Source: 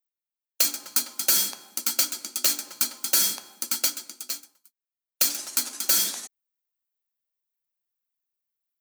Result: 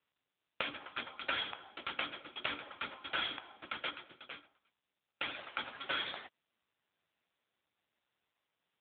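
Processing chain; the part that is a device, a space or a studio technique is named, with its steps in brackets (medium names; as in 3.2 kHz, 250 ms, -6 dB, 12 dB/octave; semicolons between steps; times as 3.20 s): telephone (band-pass 390–3500 Hz; trim +3.5 dB; AMR-NB 6.7 kbps 8 kHz)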